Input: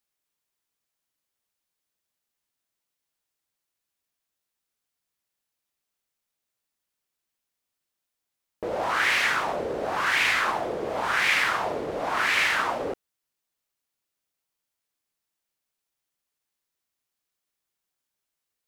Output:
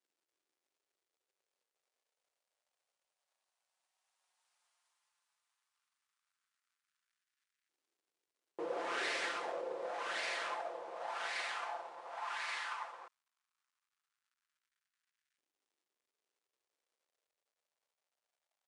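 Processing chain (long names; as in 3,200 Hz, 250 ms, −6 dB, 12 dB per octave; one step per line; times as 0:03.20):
lower of the sound and its delayed copy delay 5.6 ms
source passing by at 0:04.63, 14 m/s, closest 6.1 metres
surface crackle 350 per second −80 dBFS
downsampling to 22,050 Hz
auto-filter high-pass saw up 0.13 Hz 320–1,700 Hz
level +6.5 dB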